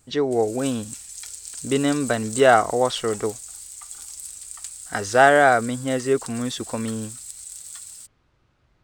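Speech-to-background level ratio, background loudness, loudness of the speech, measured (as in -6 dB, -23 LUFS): 14.5 dB, -35.5 LUFS, -21.0 LUFS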